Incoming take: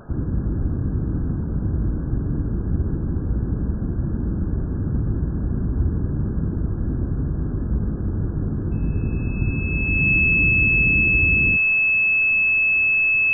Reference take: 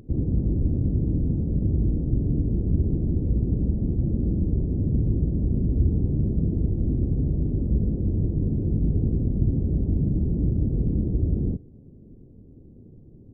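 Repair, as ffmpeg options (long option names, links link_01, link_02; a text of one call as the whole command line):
ffmpeg -i in.wav -af "bandreject=frequency=2600:width=30,afftdn=noise_reduction=21:noise_floor=-25" out.wav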